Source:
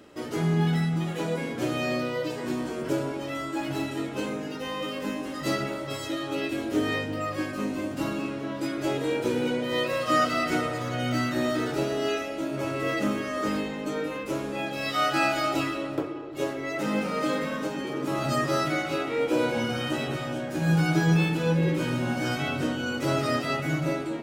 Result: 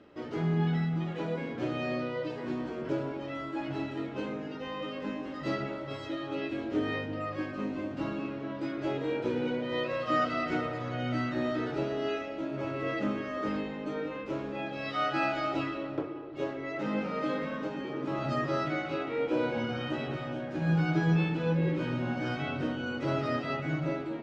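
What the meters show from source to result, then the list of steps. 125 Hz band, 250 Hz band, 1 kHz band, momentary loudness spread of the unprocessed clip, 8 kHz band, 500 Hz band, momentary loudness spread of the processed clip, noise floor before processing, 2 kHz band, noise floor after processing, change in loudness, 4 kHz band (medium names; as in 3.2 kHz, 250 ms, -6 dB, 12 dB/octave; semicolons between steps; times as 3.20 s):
-4.0 dB, -4.5 dB, -5.0 dB, 8 LU, under -15 dB, -4.5 dB, 8 LU, -35 dBFS, -6.0 dB, -40 dBFS, -5.0 dB, -9.0 dB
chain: distance through air 200 m; trim -4 dB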